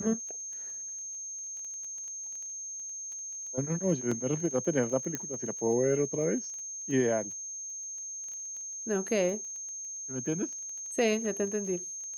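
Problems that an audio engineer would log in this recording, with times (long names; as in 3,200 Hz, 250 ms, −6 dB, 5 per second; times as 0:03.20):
surface crackle 13 per second −39 dBFS
whistle 6,400 Hz −37 dBFS
0:04.11–0:04.12: drop-out 5 ms
0:05.15: click −17 dBFS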